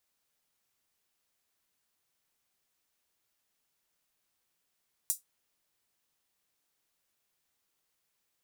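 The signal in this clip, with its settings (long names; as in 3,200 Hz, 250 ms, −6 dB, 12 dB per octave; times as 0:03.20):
closed synth hi-hat, high-pass 7,700 Hz, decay 0.15 s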